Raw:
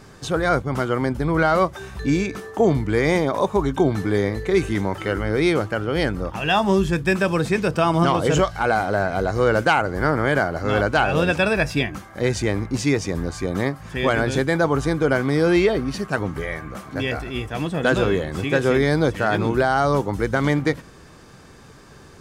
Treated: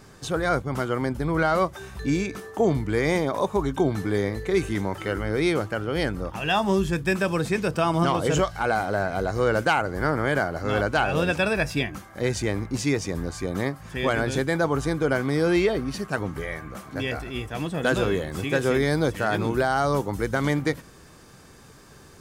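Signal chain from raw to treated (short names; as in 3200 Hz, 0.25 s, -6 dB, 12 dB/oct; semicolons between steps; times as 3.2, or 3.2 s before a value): high shelf 8900 Hz +6.5 dB, from 17.78 s +12 dB; gain -4 dB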